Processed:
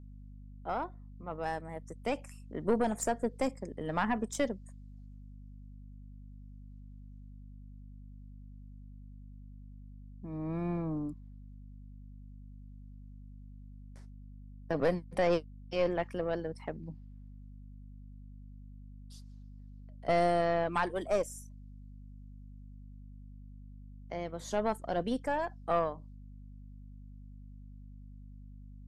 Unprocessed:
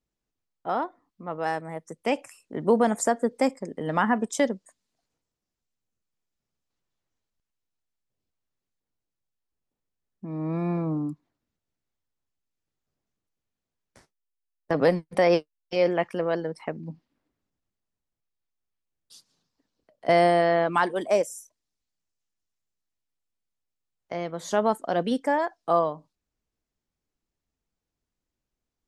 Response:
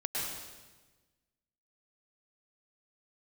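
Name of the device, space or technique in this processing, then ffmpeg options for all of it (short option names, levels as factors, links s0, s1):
valve amplifier with mains hum: -af "aeval=exprs='(tanh(5.01*val(0)+0.5)-tanh(0.5))/5.01':c=same,aeval=exprs='val(0)+0.00708*(sin(2*PI*50*n/s)+sin(2*PI*2*50*n/s)/2+sin(2*PI*3*50*n/s)/3+sin(2*PI*4*50*n/s)/4+sin(2*PI*5*50*n/s)/5)':c=same,volume=0.562"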